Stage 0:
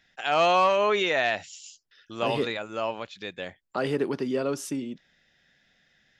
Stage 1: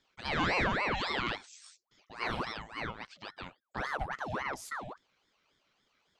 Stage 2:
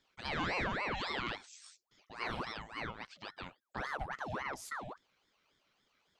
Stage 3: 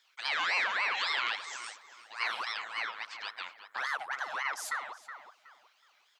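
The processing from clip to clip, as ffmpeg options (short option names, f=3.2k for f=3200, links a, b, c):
-af "aeval=exprs='val(0)*sin(2*PI*1000*n/s+1000*0.65/3.6*sin(2*PI*3.6*n/s))':c=same,volume=-6dB"
-af "acompressor=threshold=-37dB:ratio=1.5,volume=-1.5dB"
-filter_complex "[0:a]highpass=1.2k,asplit=2[a][b];[b]adelay=370,lowpass=f=2.1k:p=1,volume=-8.5dB,asplit=2[c][d];[d]adelay=370,lowpass=f=2.1k:p=1,volume=0.32,asplit=2[e][f];[f]adelay=370,lowpass=f=2.1k:p=1,volume=0.32,asplit=2[g][h];[h]adelay=370,lowpass=f=2.1k:p=1,volume=0.32[i];[a][c][e][g][i]amix=inputs=5:normalize=0,volume=8.5dB"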